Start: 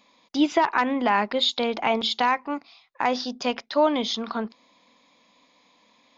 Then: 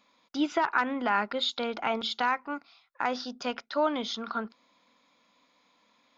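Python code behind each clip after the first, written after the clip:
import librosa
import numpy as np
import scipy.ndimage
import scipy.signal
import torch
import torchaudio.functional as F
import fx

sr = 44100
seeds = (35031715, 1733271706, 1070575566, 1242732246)

y = fx.peak_eq(x, sr, hz=1400.0, db=12.0, octaves=0.28)
y = y * librosa.db_to_amplitude(-7.0)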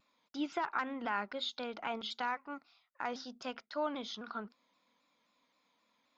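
y = fx.vibrato_shape(x, sr, shape='saw_down', rate_hz=3.8, depth_cents=100.0)
y = y * librosa.db_to_amplitude(-9.0)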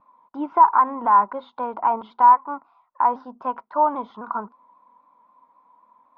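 y = fx.lowpass_res(x, sr, hz=990.0, q=9.6)
y = y * librosa.db_to_amplitude(7.5)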